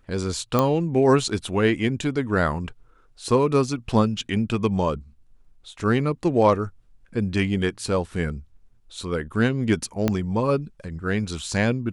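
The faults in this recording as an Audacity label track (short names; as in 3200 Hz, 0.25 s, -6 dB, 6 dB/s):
0.590000	0.590000	pop -7 dBFS
10.080000	10.080000	pop -8 dBFS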